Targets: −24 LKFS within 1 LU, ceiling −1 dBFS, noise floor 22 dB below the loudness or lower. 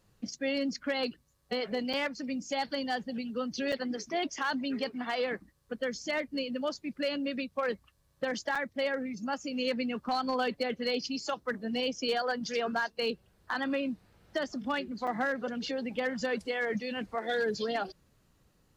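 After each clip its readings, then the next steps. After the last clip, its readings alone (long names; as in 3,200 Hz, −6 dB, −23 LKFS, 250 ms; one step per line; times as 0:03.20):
share of clipped samples 0.3%; peaks flattened at −23.0 dBFS; number of dropouts 4; longest dropout 5.6 ms; integrated loudness −33.5 LKFS; sample peak −23.0 dBFS; target loudness −24.0 LKFS
→ clipped peaks rebuilt −23 dBFS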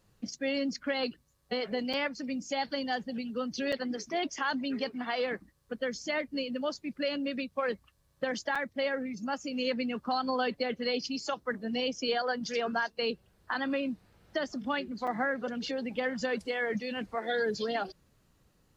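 share of clipped samples 0.0%; number of dropouts 4; longest dropout 5.6 ms
→ repair the gap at 0:01.93/0:03.72/0:08.55/0:15.07, 5.6 ms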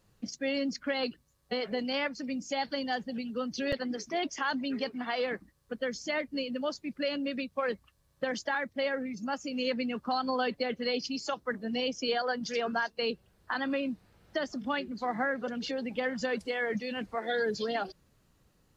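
number of dropouts 0; integrated loudness −33.0 LKFS; sample peak −19.5 dBFS; target loudness −24.0 LKFS
→ level +9 dB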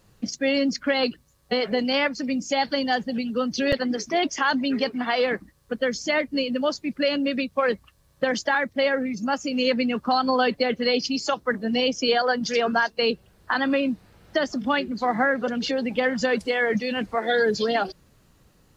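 integrated loudness −24.0 LKFS; sample peak −10.5 dBFS; background noise floor −60 dBFS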